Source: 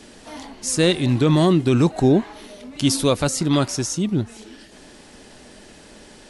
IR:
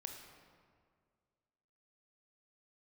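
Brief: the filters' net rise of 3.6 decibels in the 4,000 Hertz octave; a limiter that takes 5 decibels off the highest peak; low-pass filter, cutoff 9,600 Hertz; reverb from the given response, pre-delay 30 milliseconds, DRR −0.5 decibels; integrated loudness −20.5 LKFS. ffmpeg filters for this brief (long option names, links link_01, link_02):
-filter_complex "[0:a]lowpass=9600,equalizer=frequency=4000:width_type=o:gain=4.5,alimiter=limit=-10.5dB:level=0:latency=1,asplit=2[link_01][link_02];[1:a]atrim=start_sample=2205,adelay=30[link_03];[link_02][link_03]afir=irnorm=-1:irlink=0,volume=4dB[link_04];[link_01][link_04]amix=inputs=2:normalize=0,volume=-2.5dB"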